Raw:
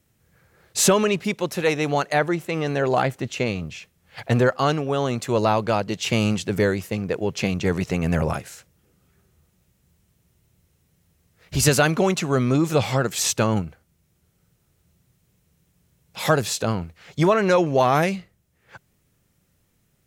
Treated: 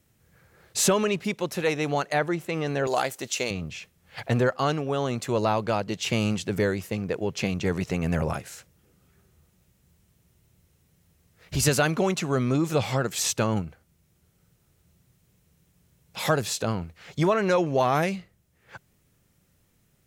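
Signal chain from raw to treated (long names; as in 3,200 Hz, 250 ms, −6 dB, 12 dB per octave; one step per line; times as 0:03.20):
0:02.87–0:03.51: bass and treble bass −13 dB, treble +13 dB
in parallel at −0.5 dB: downward compressor, threshold −33 dBFS, peak gain reduction 19 dB
on the sum: level −5.5 dB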